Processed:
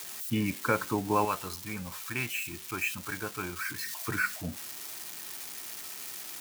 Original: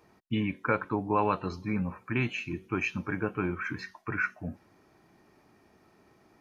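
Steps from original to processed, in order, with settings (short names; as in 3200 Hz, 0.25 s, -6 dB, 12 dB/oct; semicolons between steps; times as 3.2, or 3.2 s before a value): switching spikes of -28.5 dBFS; 1.25–3.86 bell 210 Hz -10 dB 3 oct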